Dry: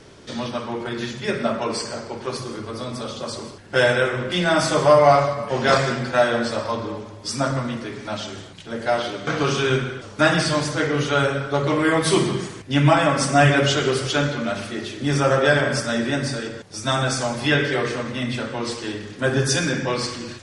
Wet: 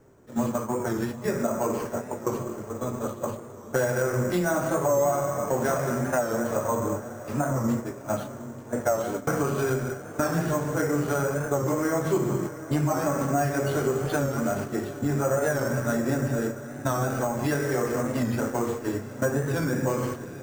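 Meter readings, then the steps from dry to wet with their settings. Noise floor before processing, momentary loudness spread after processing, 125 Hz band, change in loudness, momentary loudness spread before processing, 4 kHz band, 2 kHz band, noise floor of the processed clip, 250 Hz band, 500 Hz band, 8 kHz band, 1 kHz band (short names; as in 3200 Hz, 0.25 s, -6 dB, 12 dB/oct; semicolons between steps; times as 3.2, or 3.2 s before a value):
-40 dBFS, 7 LU, -4.5 dB, -6.0 dB, 14 LU, -19.0 dB, -10.5 dB, -40 dBFS, -3.0 dB, -5.0 dB, -5.0 dB, -7.0 dB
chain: gate -29 dBFS, range -13 dB; LPF 1300 Hz 12 dB/oct; compressor 6:1, threshold -26 dBFS, peak gain reduction 15.5 dB; flange 0.25 Hz, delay 7.5 ms, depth 5.2 ms, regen +77%; diffused feedback echo 0.784 s, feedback 49%, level -13.5 dB; careless resampling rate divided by 6×, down none, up hold; record warp 45 rpm, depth 100 cents; gain +8 dB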